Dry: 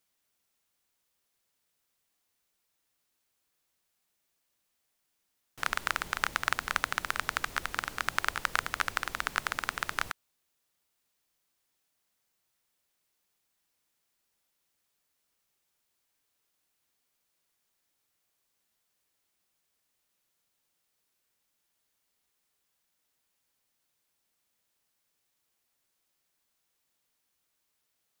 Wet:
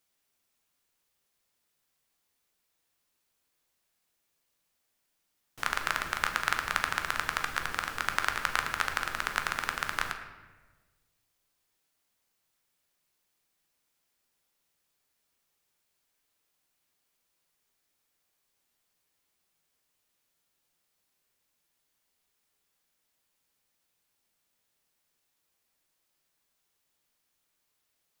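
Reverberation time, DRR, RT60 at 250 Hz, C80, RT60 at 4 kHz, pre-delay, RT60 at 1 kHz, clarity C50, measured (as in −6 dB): 1.3 s, 4.5 dB, 1.6 s, 9.5 dB, 0.85 s, 13 ms, 1.2 s, 8.0 dB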